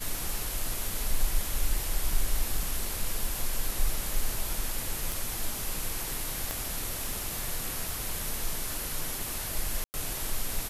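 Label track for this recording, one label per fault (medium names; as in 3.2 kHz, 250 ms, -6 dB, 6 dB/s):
2.630000	2.630000	dropout 2.4 ms
5.120000	5.120000	pop
6.510000	6.510000	pop -16 dBFS
7.890000	7.890000	pop
9.840000	9.940000	dropout 99 ms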